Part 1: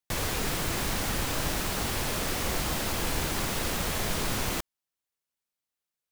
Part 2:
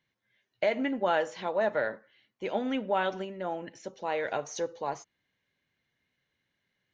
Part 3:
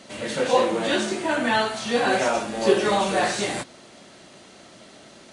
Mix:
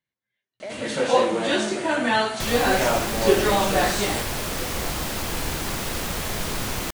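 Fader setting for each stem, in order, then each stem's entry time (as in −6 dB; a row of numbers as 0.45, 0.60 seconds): +2.0, −9.5, +0.5 decibels; 2.30, 0.00, 0.60 seconds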